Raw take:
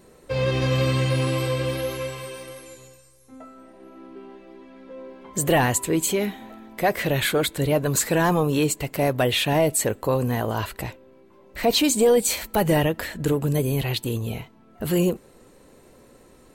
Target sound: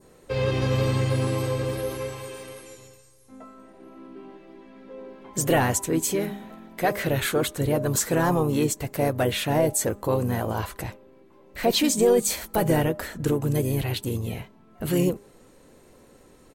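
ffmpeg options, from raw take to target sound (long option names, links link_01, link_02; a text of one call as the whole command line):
ffmpeg -i in.wav -filter_complex "[0:a]adynamicequalizer=threshold=0.00708:dfrequency=2900:dqfactor=1.2:tfrequency=2900:tqfactor=1.2:attack=5:release=100:ratio=0.375:range=3.5:mode=cutabove:tftype=bell,asplit=2[link_01][link_02];[link_02]asetrate=35002,aresample=44100,atempo=1.25992,volume=-8dB[link_03];[link_01][link_03]amix=inputs=2:normalize=0,bandreject=frequency=202.8:width_type=h:width=4,bandreject=frequency=405.6:width_type=h:width=4,bandreject=frequency=608.4:width_type=h:width=4,bandreject=frequency=811.2:width_type=h:width=4,bandreject=frequency=1014:width_type=h:width=4,bandreject=frequency=1216.8:width_type=h:width=4,volume=-2dB" out.wav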